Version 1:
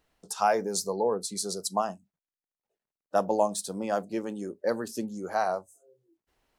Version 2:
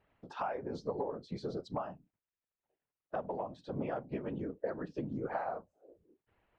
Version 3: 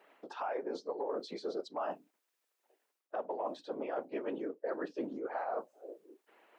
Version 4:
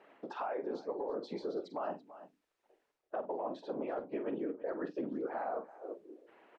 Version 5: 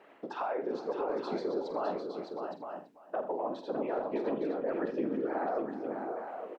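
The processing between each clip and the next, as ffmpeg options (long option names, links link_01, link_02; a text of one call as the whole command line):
ffmpeg -i in.wav -af "lowpass=frequency=2800:width=0.5412,lowpass=frequency=2800:width=1.3066,acompressor=threshold=-33dB:ratio=20,afftfilt=real='hypot(re,im)*cos(2*PI*random(0))':imag='hypot(re,im)*sin(2*PI*random(1))':win_size=512:overlap=0.75,volume=6dB" out.wav
ffmpeg -i in.wav -af "highpass=frequency=310:width=0.5412,highpass=frequency=310:width=1.3066,areverse,acompressor=threshold=-46dB:ratio=10,areverse,volume=12dB" out.wav
ffmpeg -i in.wav -filter_complex "[0:a]aemphasis=mode=reproduction:type=bsi,asplit=2[link_01][link_02];[link_02]aecho=0:1:46|334:0.266|0.119[link_03];[link_01][link_03]amix=inputs=2:normalize=0,alimiter=level_in=6dB:limit=-24dB:level=0:latency=1:release=294,volume=-6dB,volume=2dB" out.wav
ffmpeg -i in.wav -af "aecho=1:1:81|124|386|609|862:0.211|0.106|0.133|0.501|0.422,volume=3.5dB" out.wav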